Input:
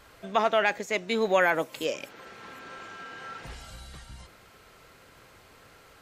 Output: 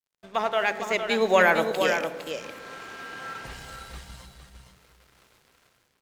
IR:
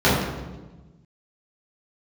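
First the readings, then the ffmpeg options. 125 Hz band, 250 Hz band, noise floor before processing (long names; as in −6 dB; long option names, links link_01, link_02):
+2.5 dB, +2.5 dB, −55 dBFS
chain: -filter_complex "[0:a]lowshelf=frequency=350:gain=-3.5,dynaudnorm=framelen=330:gausssize=5:maxgain=7dB,aeval=exprs='sgn(val(0))*max(abs(val(0))-0.00501,0)':channel_layout=same,aecho=1:1:458:0.447,asplit=2[link_01][link_02];[1:a]atrim=start_sample=2205,adelay=55[link_03];[link_02][link_03]afir=irnorm=-1:irlink=0,volume=-35dB[link_04];[link_01][link_04]amix=inputs=2:normalize=0,volume=-2dB"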